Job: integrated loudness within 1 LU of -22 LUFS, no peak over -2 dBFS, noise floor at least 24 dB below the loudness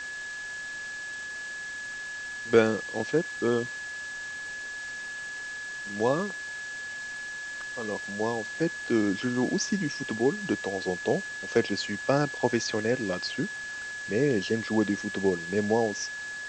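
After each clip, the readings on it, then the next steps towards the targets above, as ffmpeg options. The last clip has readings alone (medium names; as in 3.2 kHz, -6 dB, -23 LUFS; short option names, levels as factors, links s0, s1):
steady tone 1.7 kHz; tone level -35 dBFS; noise floor -38 dBFS; noise floor target -54 dBFS; loudness -29.5 LUFS; peak level -6.5 dBFS; loudness target -22.0 LUFS
-> -af "bandreject=f=1700:w=30"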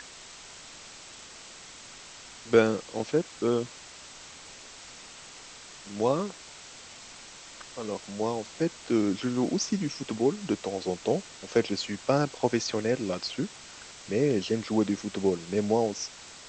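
steady tone not found; noise floor -47 dBFS; noise floor target -53 dBFS
-> -af "afftdn=nr=6:nf=-47"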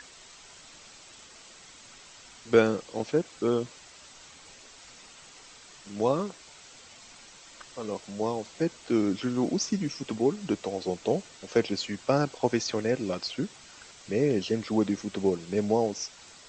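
noise floor -51 dBFS; noise floor target -53 dBFS
-> -af "afftdn=nr=6:nf=-51"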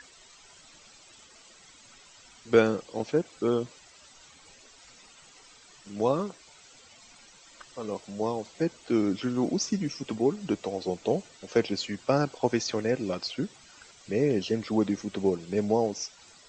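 noise floor -55 dBFS; loudness -29.0 LUFS; peak level -7.0 dBFS; loudness target -22.0 LUFS
-> -af "volume=2.24,alimiter=limit=0.794:level=0:latency=1"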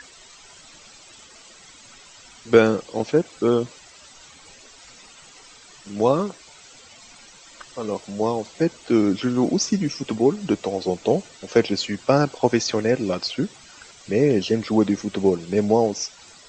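loudness -22.0 LUFS; peak level -2.0 dBFS; noise floor -48 dBFS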